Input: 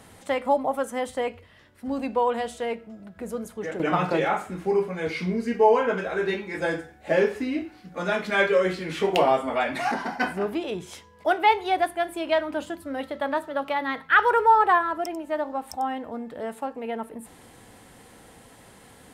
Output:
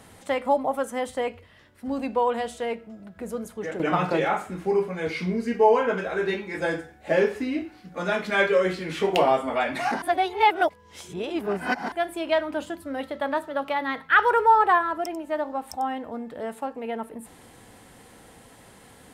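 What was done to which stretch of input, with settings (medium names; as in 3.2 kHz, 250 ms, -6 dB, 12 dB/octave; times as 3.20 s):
10.02–11.92 s: reverse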